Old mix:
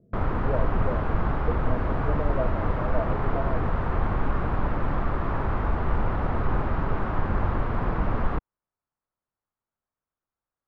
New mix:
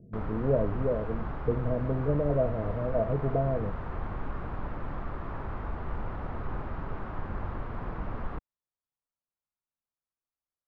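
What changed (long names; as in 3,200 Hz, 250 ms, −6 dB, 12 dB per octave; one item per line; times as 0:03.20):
speech: add low-shelf EQ 330 Hz +10 dB
background −10.0 dB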